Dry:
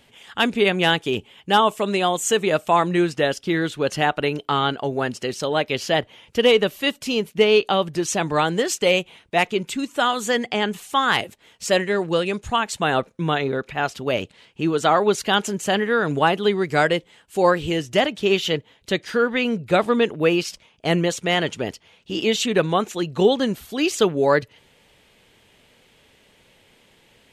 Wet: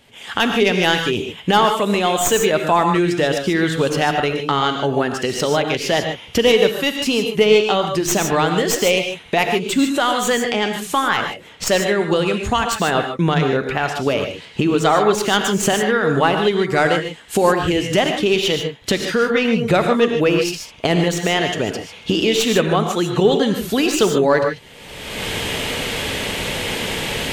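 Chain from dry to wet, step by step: tracing distortion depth 0.045 ms; recorder AGC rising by 35 dB/s; 10.93–11.67 s: treble shelf 4.3 kHz -11 dB; gated-style reverb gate 170 ms rising, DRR 4.5 dB; trim +1.5 dB

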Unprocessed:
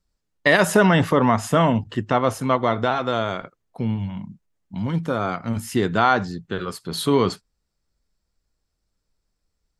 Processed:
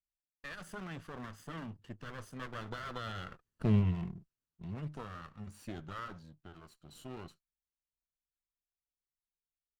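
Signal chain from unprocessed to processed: comb filter that takes the minimum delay 0.63 ms; Doppler pass-by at 3.77 s, 14 m/s, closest 2.9 m; pitch shift -1 st; trim -2.5 dB

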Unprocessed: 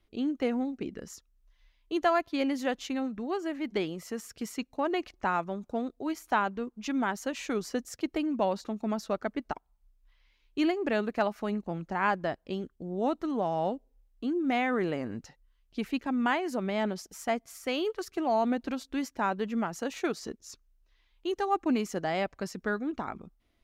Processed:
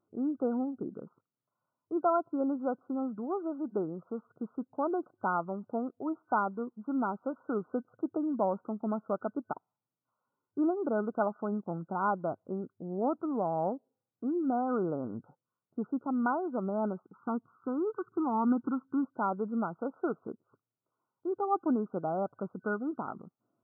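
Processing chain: 17.05–19.05 s: comb 0.8 ms, depth 93%; FFT band-pass 100–1500 Hz; trim -1.5 dB

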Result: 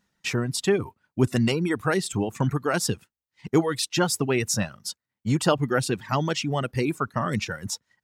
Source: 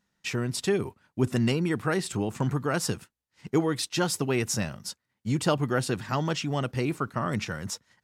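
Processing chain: reverb removal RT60 1.1 s; trim +4 dB

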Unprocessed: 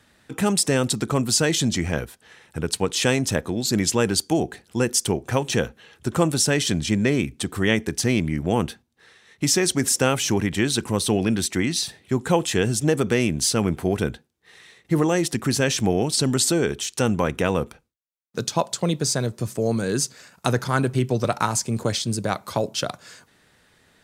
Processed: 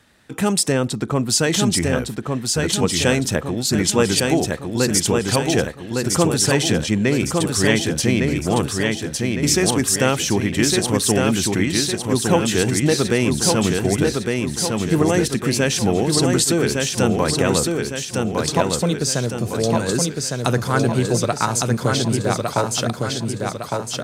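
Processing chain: 0.72–1.30 s: treble shelf 3.3 kHz -9 dB; on a send: feedback delay 1158 ms, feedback 50%, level -3.5 dB; on the sum: trim +2 dB

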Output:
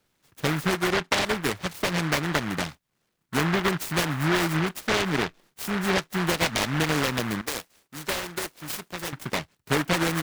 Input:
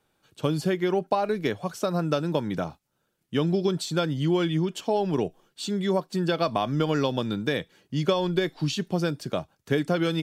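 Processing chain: 7.41–9.13 s: high-pass 1 kHz 6 dB/octave; delay time shaken by noise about 1.3 kHz, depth 0.35 ms

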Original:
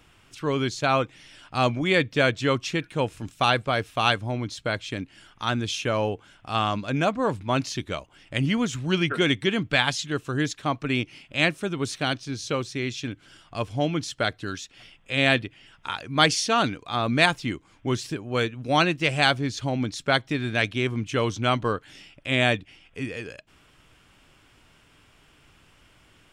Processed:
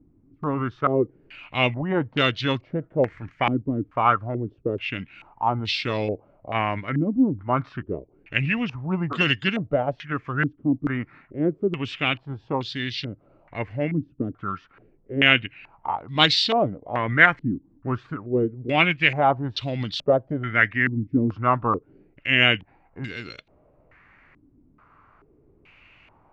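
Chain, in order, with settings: formant shift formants -3 st; step-sequenced low-pass 2.3 Hz 280–3900 Hz; trim -1.5 dB

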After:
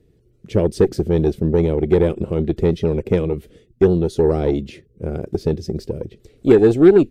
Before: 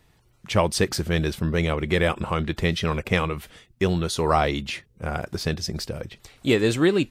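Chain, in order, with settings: resonant low shelf 620 Hz +13.5 dB, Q 3; Chebyshev shaper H 4 -26 dB, 6 -22 dB, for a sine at 9 dBFS; trim -10 dB

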